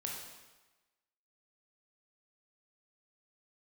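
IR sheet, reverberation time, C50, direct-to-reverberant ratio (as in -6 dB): 1.2 s, 1.5 dB, -2.0 dB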